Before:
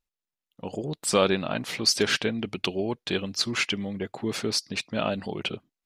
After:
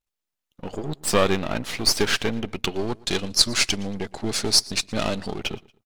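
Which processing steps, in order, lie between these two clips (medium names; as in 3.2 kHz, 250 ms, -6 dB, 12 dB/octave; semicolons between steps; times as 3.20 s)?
partial rectifier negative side -12 dB; 2.74–5.39 s: high-order bell 6.5 kHz +8 dB; feedback delay 116 ms, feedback 38%, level -23.5 dB; trim +5.5 dB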